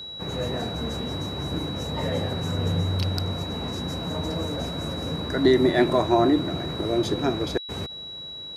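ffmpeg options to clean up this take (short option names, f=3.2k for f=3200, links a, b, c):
-af "bandreject=f=3.9k:w=30"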